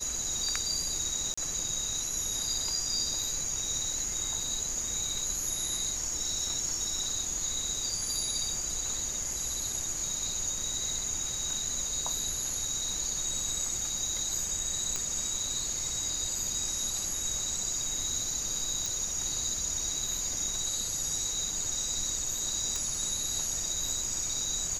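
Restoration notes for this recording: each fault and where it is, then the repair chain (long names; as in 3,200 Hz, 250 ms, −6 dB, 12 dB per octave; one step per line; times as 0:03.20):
0:01.34–0:01.38: drop-out 35 ms
0:14.96: click −17 dBFS
0:18.86: click
0:22.76: click −18 dBFS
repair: click removal
repair the gap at 0:01.34, 35 ms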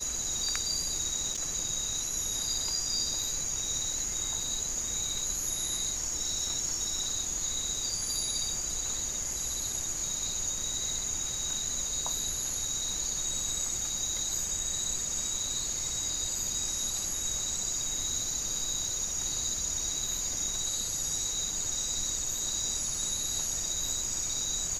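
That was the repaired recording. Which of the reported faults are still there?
none of them is left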